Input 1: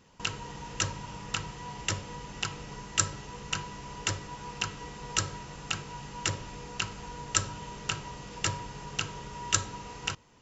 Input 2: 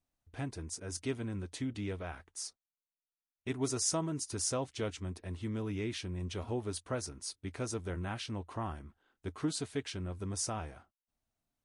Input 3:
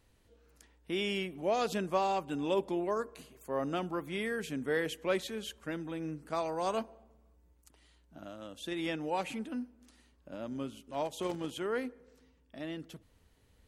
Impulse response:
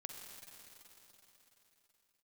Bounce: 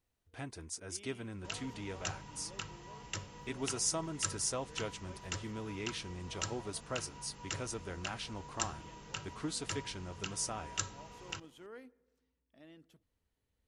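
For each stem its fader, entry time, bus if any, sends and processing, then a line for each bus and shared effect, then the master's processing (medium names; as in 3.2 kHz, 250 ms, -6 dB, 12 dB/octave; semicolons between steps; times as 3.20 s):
-10.0 dB, 1.25 s, no send, none
-0.5 dB, 0.00 s, no send, bass shelf 450 Hz -7 dB
-16.5 dB, 0.00 s, no send, auto duck -9 dB, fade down 1.50 s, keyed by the second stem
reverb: none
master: none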